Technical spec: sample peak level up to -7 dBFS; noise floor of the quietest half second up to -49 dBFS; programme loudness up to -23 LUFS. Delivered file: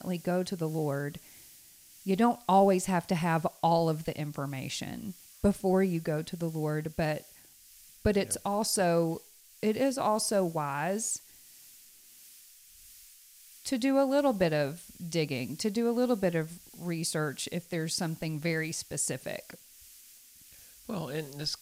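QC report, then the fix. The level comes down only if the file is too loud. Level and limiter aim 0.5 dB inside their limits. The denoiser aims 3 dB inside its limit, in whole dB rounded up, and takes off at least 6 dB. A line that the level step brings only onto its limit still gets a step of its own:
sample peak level -12.5 dBFS: OK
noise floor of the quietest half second -56 dBFS: OK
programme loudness -30.5 LUFS: OK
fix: none

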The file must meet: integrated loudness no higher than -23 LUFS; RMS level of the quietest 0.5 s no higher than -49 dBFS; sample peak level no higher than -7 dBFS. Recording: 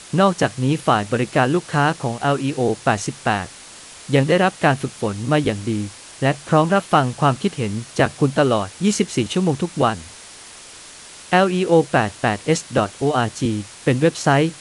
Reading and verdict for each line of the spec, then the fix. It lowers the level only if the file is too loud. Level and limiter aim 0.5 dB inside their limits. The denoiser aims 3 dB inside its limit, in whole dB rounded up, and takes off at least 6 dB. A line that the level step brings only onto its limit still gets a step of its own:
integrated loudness -19.5 LUFS: fail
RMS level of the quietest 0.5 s -41 dBFS: fail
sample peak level -3.0 dBFS: fail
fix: denoiser 7 dB, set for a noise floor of -41 dBFS; gain -4 dB; limiter -7.5 dBFS

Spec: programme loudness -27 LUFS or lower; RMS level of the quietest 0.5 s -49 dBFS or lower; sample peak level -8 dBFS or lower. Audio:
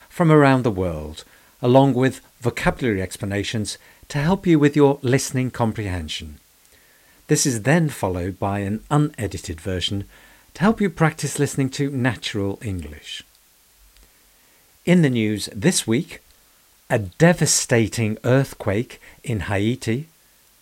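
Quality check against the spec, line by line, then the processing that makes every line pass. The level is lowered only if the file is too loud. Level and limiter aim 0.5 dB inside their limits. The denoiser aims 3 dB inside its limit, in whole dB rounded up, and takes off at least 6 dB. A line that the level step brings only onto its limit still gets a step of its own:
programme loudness -20.5 LUFS: fail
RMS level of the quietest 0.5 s -56 dBFS: OK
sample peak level -2.5 dBFS: fail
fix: gain -7 dB

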